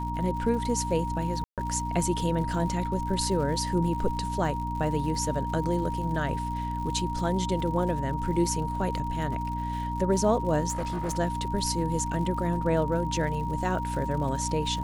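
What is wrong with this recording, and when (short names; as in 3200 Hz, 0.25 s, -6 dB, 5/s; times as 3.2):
crackle 120/s -37 dBFS
hum 60 Hz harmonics 5 -33 dBFS
tone 940 Hz -32 dBFS
1.44–1.58 gap 0.137 s
10.69–11.18 clipped -26.5 dBFS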